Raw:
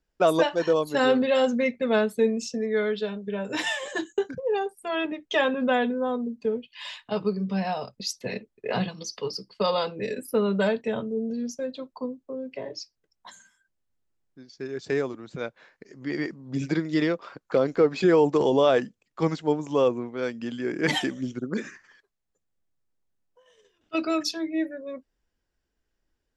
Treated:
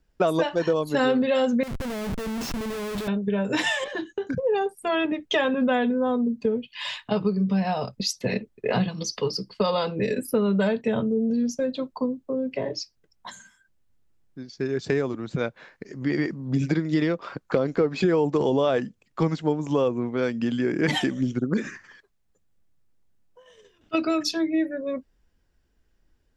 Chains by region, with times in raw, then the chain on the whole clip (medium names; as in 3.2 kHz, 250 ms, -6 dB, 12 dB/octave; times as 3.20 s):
1.63–3.08 s: low-pass 3.8 kHz 6 dB/octave + compression 12:1, threshold -34 dBFS + Schmitt trigger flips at -47 dBFS
3.84–4.27 s: compression 2:1, threshold -40 dBFS + Savitzky-Golay filter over 15 samples
whole clip: tone controls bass +6 dB, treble -2 dB; compression 3:1, threshold -28 dBFS; trim +6.5 dB